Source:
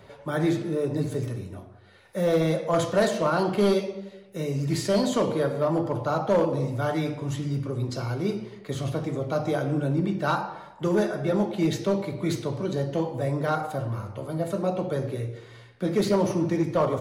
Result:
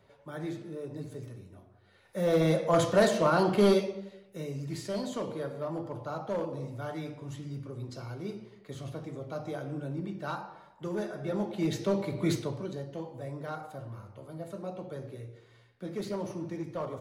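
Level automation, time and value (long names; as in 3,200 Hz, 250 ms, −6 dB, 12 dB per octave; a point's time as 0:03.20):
0:01.53 −13 dB
0:02.51 −1 dB
0:03.73 −1 dB
0:04.72 −11 dB
0:10.95 −11 dB
0:12.29 −1 dB
0:12.85 −12.5 dB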